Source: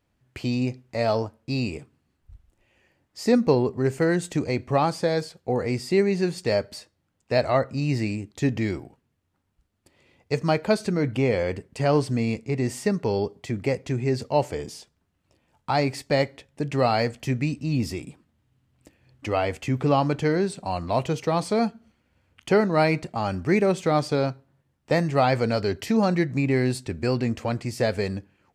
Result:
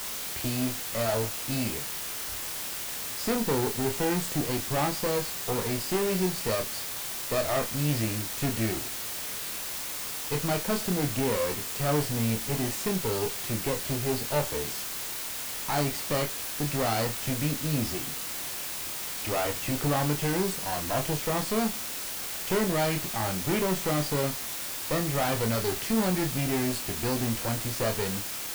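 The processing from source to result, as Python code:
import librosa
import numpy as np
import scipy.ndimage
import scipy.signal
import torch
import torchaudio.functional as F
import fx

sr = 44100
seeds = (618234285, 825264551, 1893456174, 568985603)

y = fx.tube_stage(x, sr, drive_db=24.0, bias=0.65)
y = fx.quant_dither(y, sr, seeds[0], bits=6, dither='triangular')
y = fx.doubler(y, sr, ms=27.0, db=-6)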